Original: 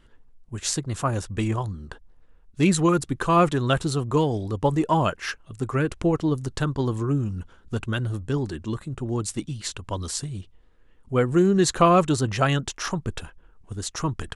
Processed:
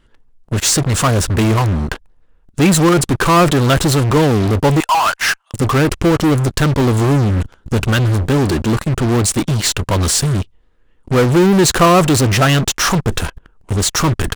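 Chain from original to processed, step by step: 4.80–5.54 s: steep high-pass 770 Hz 36 dB/octave; in parallel at -3.5 dB: fuzz box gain 41 dB, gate -43 dBFS; on the sum: trim +2 dB

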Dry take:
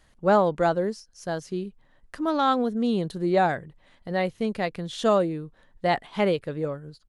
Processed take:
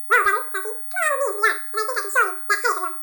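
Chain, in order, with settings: bass shelf 300 Hz -6 dB; static phaser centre 350 Hz, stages 6; whistle 7.5 kHz -31 dBFS; two-slope reverb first 0.92 s, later 3.3 s, from -24 dB, DRR 5 dB; speed mistake 33 rpm record played at 78 rpm; trim +6 dB

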